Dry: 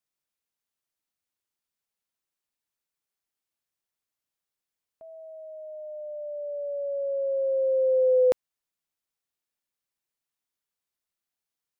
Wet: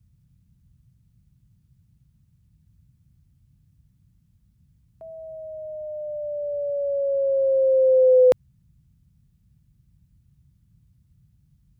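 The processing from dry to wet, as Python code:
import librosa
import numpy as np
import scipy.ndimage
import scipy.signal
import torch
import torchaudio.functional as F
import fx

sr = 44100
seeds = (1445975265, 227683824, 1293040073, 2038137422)

y = fx.dmg_noise_band(x, sr, seeds[0], low_hz=36.0, high_hz=160.0, level_db=-65.0)
y = y * 10.0 ** (5.5 / 20.0)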